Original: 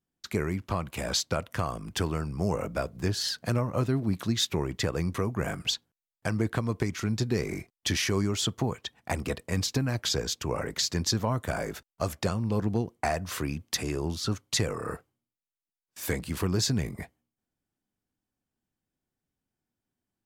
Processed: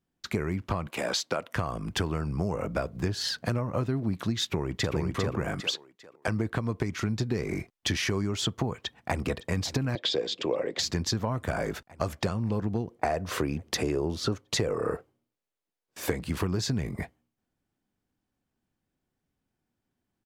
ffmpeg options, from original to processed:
ffmpeg -i in.wav -filter_complex "[0:a]asettb=1/sr,asplit=3[link_01][link_02][link_03];[link_01]atrim=end=0.874[link_04];[link_02]atrim=start=0.87:end=1.56,asetpts=PTS-STARTPTS,afade=type=in:duration=0.004:curve=qsin,afade=type=out:start_time=0.686:duration=0.004:curve=qsin,highpass=260[link_05];[link_03]atrim=start=1.556[link_06];[link_04][link_05]acrossfade=duration=0.004:curve1=hsin:curve2=qsin[link_07];[link_07][link_06]acrossfade=duration=0.004:curve1=qsin:curve2=hsin,asplit=2[link_08][link_09];[link_09]afade=type=in:start_time=4.44:duration=0.01,afade=type=out:start_time=4.95:duration=0.01,aecho=0:1:400|800|1200|1600:0.891251|0.222813|0.0557032|0.0139258[link_10];[link_08][link_10]amix=inputs=2:normalize=0,asettb=1/sr,asplit=3[link_11][link_12][link_13];[link_11]atrim=end=5.604[link_14];[link_12]atrim=start=5.6:end=6.28,asetpts=PTS-STARTPTS,afade=type=in:duration=0.004:curve=qsin,afade=type=out:start_time=0.676:duration=0.004:curve=qsin,highpass=320[link_15];[link_13]atrim=start=6.276[link_16];[link_14][link_15]acrossfade=duration=0.004:curve1=hsin:curve2=qsin[link_17];[link_17][link_16]acrossfade=duration=0.004:curve1=qsin:curve2=hsin,asplit=2[link_18][link_19];[link_19]afade=type=in:start_time=8.82:duration=0.01,afade=type=out:start_time=9.29:duration=0.01,aecho=0:1:560|1120|1680|2240|2800|3360|3920|4480|5040|5600:0.141254|0.10594|0.0794552|0.0595914|0.0446936|0.0335202|0.0251401|0.0188551|0.0141413|0.010606[link_20];[link_18][link_20]amix=inputs=2:normalize=0,asettb=1/sr,asplit=3[link_21][link_22][link_23];[link_21]atrim=end=9.954[link_24];[link_22]atrim=start=9.95:end=10.79,asetpts=PTS-STARTPTS,afade=type=in:duration=0.004:curve=qsin,afade=type=out:start_time=0.836:duration=0.004:curve=qsin,highpass=260,equalizer=frequency=340:width_type=q:width=4:gain=5,equalizer=frequency=520:width_type=q:width=4:gain=9,equalizer=frequency=900:width_type=q:width=4:gain=-4,equalizer=frequency=1400:width_type=q:width=4:gain=-9,equalizer=frequency=3500:width_type=q:width=4:gain=8,equalizer=frequency=6100:width_type=q:width=4:gain=-9,lowpass=frequency=6800:width=0.5412,lowpass=frequency=6800:width=1.3066[link_25];[link_23]atrim=start=10.786[link_26];[link_24][link_25]acrossfade=duration=0.004:curve1=hsin:curve2=qsin[link_27];[link_27][link_26]acrossfade=duration=0.004:curve1=qsin:curve2=hsin,asettb=1/sr,asplit=3[link_28][link_29][link_30];[link_28]atrim=end=12.914[link_31];[link_29]atrim=start=12.91:end=16.12,asetpts=PTS-STARTPTS,afade=type=in:duration=0.004:curve=qsin,afade=type=out:start_time=3.206:duration=0.004:curve=qsin,equalizer=frequency=460:width=1.1:gain=8[link_32];[link_30]atrim=start=16.116[link_33];[link_31][link_32]acrossfade=duration=0.004:curve1=hsin:curve2=qsin[link_34];[link_34][link_33]acrossfade=duration=0.004:curve1=qsin:curve2=hsin,highshelf=frequency=5200:gain=-9,acompressor=threshold=-31dB:ratio=4,volume=5.5dB" out.wav

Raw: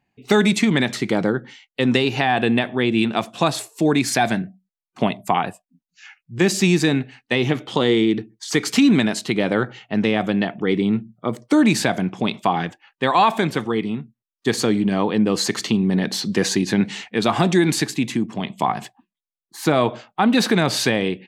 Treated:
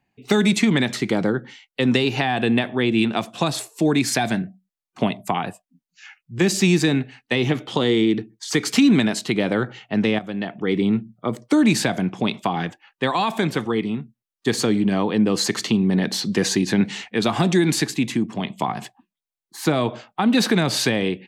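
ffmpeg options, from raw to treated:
ffmpeg -i in.wav -filter_complex "[0:a]asplit=2[link_01][link_02];[link_01]atrim=end=10.19,asetpts=PTS-STARTPTS,afade=type=out:start_time=10.186:duration=0.004:curve=hsin:silence=0.223872[link_03];[link_02]atrim=start=10.19,asetpts=PTS-STARTPTS,afade=type=in:duration=0.63:silence=0.223872[link_04];[link_03][link_04]concat=n=2:v=0:a=1,acrossover=split=330|3000[link_05][link_06][link_07];[link_06]acompressor=threshold=-20dB:ratio=6[link_08];[link_05][link_08][link_07]amix=inputs=3:normalize=0" out.wav

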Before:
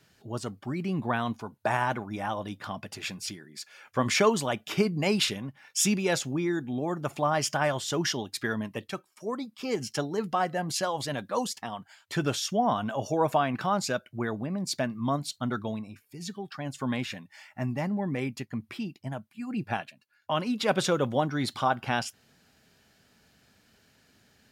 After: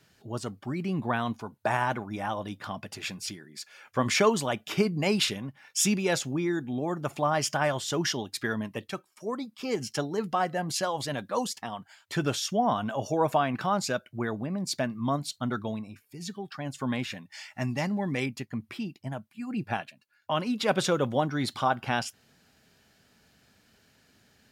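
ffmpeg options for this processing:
ffmpeg -i in.wav -filter_complex "[0:a]asettb=1/sr,asplit=3[link_01][link_02][link_03];[link_01]atrim=end=17.324[link_04];[link_02]atrim=start=17.32:end=18.26,asetpts=PTS-STARTPTS,afade=type=in:duration=0.004:curve=qsin,afade=type=out:start_time=0.936:duration=0.004:curve=qsin,equalizer=frequency=5300:width_type=o:width=2.3:gain=11[link_05];[link_03]atrim=start=18.256[link_06];[link_04][link_05]acrossfade=duration=0.004:curve1=hsin:curve2=qsin[link_07];[link_07][link_06]acrossfade=duration=0.004:curve1=qsin:curve2=hsin" out.wav

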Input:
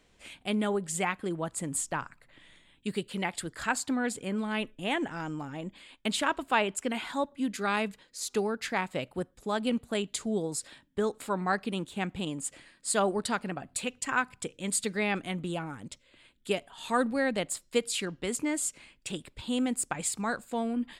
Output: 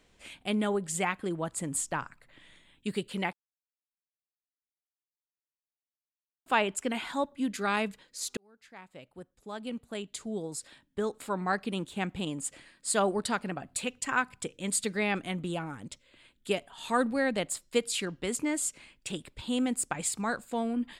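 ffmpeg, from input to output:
ffmpeg -i in.wav -filter_complex "[0:a]asplit=4[link_01][link_02][link_03][link_04];[link_01]atrim=end=3.33,asetpts=PTS-STARTPTS,afade=type=out:start_time=3.326:duration=0.004:curve=hsin[link_05];[link_02]atrim=start=3.33:end=6.46,asetpts=PTS-STARTPTS,volume=0[link_06];[link_03]atrim=start=6.46:end=8.37,asetpts=PTS-STARTPTS,afade=type=in:duration=0.004:curve=hsin,afade=type=out:start_time=1.906:duration=0.004:curve=hsin[link_07];[link_04]atrim=start=8.37,asetpts=PTS-STARTPTS,afade=type=in:duration=3.51[link_08];[link_05][link_06][link_07][link_08]concat=n=4:v=0:a=1" out.wav

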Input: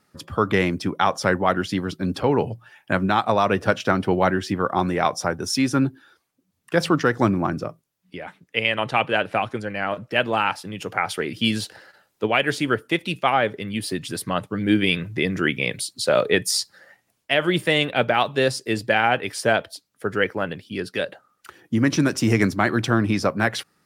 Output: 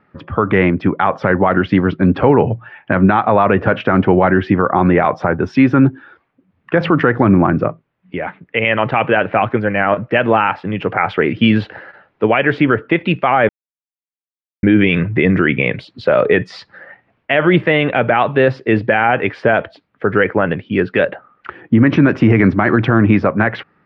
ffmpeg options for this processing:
ffmpeg -i in.wav -filter_complex "[0:a]asplit=3[link_01][link_02][link_03];[link_01]atrim=end=13.49,asetpts=PTS-STARTPTS,afade=type=out:start_time=13.486:duration=0.004:curve=hsin[link_04];[link_02]atrim=start=13.49:end=14.63,asetpts=PTS-STARTPTS,volume=0[link_05];[link_03]atrim=start=14.63,asetpts=PTS-STARTPTS,afade=type=in:duration=0.004:curve=hsin[link_06];[link_04][link_05][link_06]concat=n=3:v=0:a=1,dynaudnorm=framelen=240:gausssize=9:maxgain=11.5dB,lowpass=frequency=2400:width=0.5412,lowpass=frequency=2400:width=1.3066,alimiter=level_in=10dB:limit=-1dB:release=50:level=0:latency=1,volume=-1dB" out.wav

